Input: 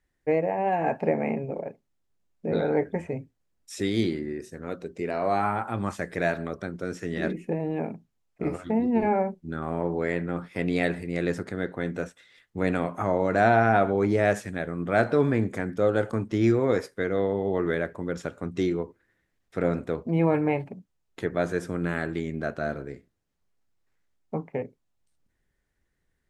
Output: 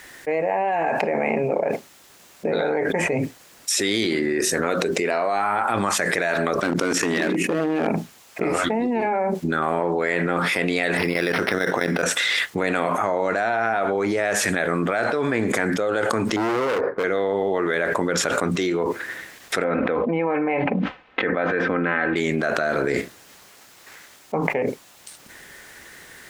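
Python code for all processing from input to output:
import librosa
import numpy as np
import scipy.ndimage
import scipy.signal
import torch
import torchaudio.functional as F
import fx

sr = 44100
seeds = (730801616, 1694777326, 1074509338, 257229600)

y = fx.chain(x, sr, fx.peak_eq(hz=280.0, db=8.0, octaves=0.46),
    fx.level_steps(step_db=11),
    fx.clip_hard(threshold_db=-28.0), at=(6.6, 7.88))
y = fx.chain(y, sr, fx.high_shelf(hz=3500.0, db=9.5),
    fx.level_steps(step_db=14),
    fx.resample_linear(factor=6), at=(10.97, 12.03))
y = fx.chain(y, sr, fx.lowpass(hz=1200.0, slope=24),
    fx.clip_hard(threshold_db=-27.0), at=(16.36, 17.04))
y = fx.chain(y, sr, fx.lowpass(hz=2700.0, slope=24),
    fx.comb(ms=3.9, depth=0.47),
    fx.sustainer(db_per_s=120.0), at=(19.64, 22.16))
y = fx.highpass(y, sr, hz=890.0, slope=6)
y = fx.env_flatten(y, sr, amount_pct=100)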